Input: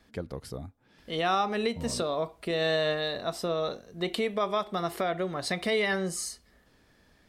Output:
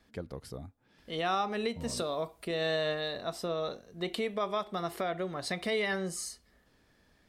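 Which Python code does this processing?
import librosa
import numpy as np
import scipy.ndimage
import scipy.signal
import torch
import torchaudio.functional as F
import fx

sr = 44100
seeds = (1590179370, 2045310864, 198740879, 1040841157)

y = fx.high_shelf(x, sr, hz=7500.0, db=11.5, at=(1.97, 2.45))
y = y * 10.0 ** (-4.0 / 20.0)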